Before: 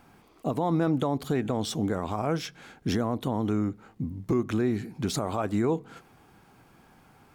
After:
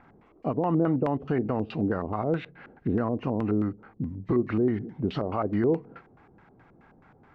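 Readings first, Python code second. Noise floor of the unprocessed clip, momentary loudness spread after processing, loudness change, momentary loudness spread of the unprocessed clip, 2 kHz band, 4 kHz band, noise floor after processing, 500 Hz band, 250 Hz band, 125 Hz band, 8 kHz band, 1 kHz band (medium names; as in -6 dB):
-59 dBFS, 9 LU, +1.0 dB, 8 LU, -1.0 dB, under -10 dB, -59 dBFS, +2.0 dB, +1.0 dB, 0.0 dB, under -30 dB, -0.5 dB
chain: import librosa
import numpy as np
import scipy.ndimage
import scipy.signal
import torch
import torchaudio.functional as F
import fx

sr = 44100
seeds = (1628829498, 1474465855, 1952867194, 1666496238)

y = fx.freq_compress(x, sr, knee_hz=1700.0, ratio=1.5)
y = fx.filter_lfo_lowpass(y, sr, shape='square', hz=4.7, low_hz=500.0, high_hz=2000.0, q=1.4)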